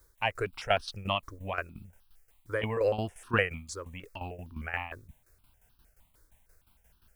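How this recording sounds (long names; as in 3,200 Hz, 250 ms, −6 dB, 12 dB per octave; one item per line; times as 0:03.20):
a quantiser's noise floor 12 bits, dither triangular
tremolo saw down 5.7 Hz, depth 75%
notches that jump at a steady rate 6.5 Hz 740–2,100 Hz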